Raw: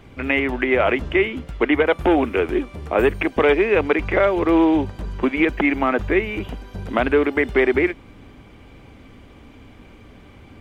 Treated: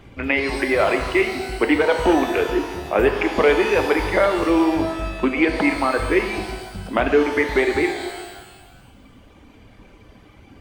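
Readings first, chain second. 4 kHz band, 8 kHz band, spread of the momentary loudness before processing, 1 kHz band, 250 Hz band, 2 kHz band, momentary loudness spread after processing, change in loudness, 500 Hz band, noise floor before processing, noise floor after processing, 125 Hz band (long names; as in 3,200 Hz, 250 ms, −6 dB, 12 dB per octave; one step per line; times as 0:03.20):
+3.5 dB, can't be measured, 8 LU, +1.5 dB, −1.0 dB, 0.0 dB, 8 LU, 0.0 dB, 0.0 dB, −46 dBFS, −48 dBFS, −2.0 dB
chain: reverb reduction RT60 1.9 s
reverb with rising layers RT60 1.4 s, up +12 semitones, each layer −8 dB, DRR 5 dB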